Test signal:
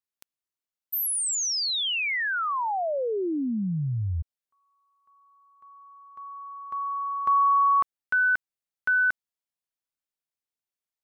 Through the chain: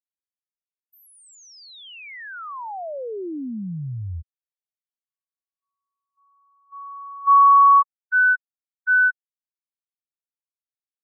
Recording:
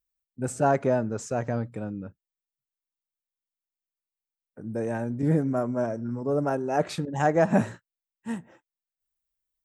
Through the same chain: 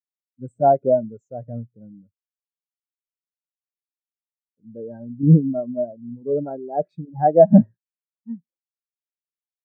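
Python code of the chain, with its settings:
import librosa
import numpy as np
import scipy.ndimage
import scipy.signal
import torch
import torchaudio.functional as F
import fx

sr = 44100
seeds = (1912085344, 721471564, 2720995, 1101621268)

y = fx.spectral_expand(x, sr, expansion=2.5)
y = y * 10.0 ** (8.5 / 20.0)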